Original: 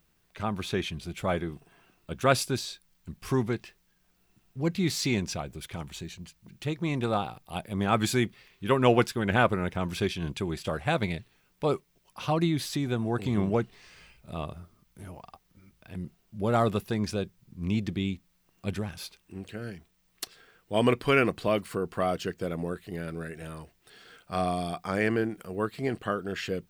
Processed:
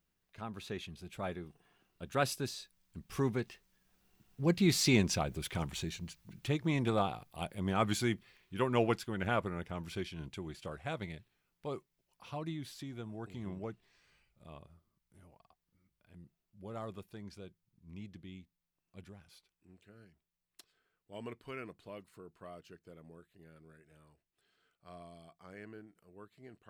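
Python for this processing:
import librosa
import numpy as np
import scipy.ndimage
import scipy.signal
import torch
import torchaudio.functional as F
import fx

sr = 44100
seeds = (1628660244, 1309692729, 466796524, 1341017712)

y = fx.doppler_pass(x, sr, speed_mps=14, closest_m=16.0, pass_at_s=5.41)
y = F.gain(torch.from_numpy(y), 1.0).numpy()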